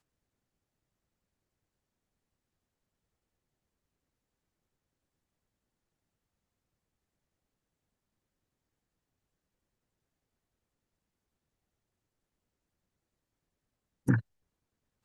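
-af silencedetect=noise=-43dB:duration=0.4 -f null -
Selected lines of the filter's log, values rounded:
silence_start: 0.00
silence_end: 14.07 | silence_duration: 14.07
silence_start: 14.21
silence_end: 15.05 | silence_duration: 0.84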